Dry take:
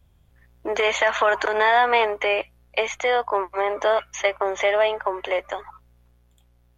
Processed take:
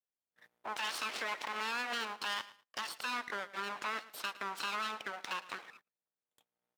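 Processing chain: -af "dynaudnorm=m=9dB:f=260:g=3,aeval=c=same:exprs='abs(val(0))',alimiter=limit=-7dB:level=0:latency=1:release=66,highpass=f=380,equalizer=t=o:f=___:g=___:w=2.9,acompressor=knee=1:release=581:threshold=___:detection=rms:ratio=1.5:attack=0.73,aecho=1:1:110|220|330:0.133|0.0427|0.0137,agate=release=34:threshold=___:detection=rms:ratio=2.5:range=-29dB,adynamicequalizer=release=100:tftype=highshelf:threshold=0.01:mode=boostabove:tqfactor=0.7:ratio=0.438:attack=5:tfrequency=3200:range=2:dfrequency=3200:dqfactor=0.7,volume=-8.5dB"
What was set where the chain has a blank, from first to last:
1300, 4.5, -43dB, -54dB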